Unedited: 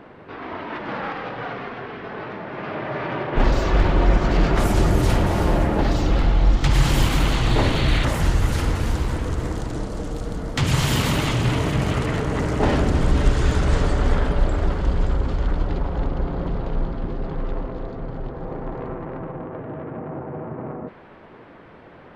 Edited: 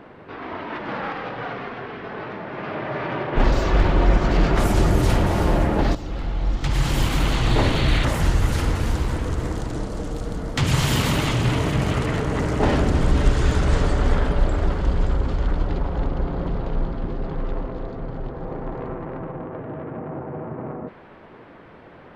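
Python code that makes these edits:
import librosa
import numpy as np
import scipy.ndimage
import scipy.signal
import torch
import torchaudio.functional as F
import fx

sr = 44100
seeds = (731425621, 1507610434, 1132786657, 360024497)

y = fx.edit(x, sr, fx.fade_in_from(start_s=5.95, length_s=1.55, floor_db=-13.0), tone=tone)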